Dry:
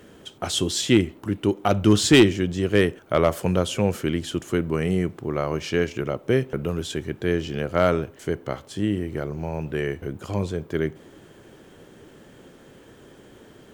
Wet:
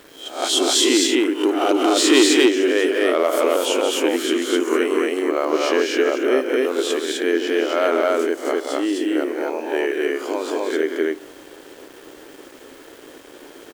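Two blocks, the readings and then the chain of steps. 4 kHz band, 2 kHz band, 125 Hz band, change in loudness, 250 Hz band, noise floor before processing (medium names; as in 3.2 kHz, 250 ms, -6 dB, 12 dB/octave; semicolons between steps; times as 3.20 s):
+7.5 dB, +6.0 dB, under -30 dB, +4.5 dB, +3.0 dB, -50 dBFS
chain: reverse spectral sustain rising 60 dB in 0.41 s; peak limiter -11.5 dBFS, peak gain reduction 7.5 dB; brick-wall FIR high-pass 250 Hz; loudspeakers at several distances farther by 62 m -7 dB, 88 m -1 dB; small samples zeroed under -46.5 dBFS; trim +4 dB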